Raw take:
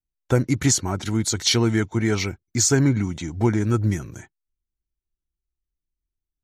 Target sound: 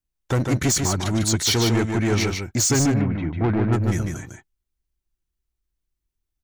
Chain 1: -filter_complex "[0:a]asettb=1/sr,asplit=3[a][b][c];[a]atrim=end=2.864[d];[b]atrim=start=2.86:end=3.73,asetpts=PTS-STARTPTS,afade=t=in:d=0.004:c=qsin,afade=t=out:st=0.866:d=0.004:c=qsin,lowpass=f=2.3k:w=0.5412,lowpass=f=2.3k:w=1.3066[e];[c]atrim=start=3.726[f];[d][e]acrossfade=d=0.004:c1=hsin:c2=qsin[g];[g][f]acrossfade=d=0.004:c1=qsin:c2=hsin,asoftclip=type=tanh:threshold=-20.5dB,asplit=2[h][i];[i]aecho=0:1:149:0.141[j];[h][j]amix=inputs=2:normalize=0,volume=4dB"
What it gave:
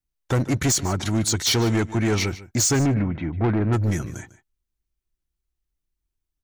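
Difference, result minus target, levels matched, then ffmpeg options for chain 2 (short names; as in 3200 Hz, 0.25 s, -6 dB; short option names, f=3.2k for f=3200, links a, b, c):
echo-to-direct -12 dB
-filter_complex "[0:a]asettb=1/sr,asplit=3[a][b][c];[a]atrim=end=2.864[d];[b]atrim=start=2.86:end=3.73,asetpts=PTS-STARTPTS,afade=t=in:d=0.004:c=qsin,afade=t=out:st=0.866:d=0.004:c=qsin,lowpass=f=2.3k:w=0.5412,lowpass=f=2.3k:w=1.3066[e];[c]atrim=start=3.726[f];[d][e]acrossfade=d=0.004:c1=hsin:c2=qsin[g];[g][f]acrossfade=d=0.004:c1=qsin:c2=hsin,asoftclip=type=tanh:threshold=-20.5dB,asplit=2[h][i];[i]aecho=0:1:149:0.562[j];[h][j]amix=inputs=2:normalize=0,volume=4dB"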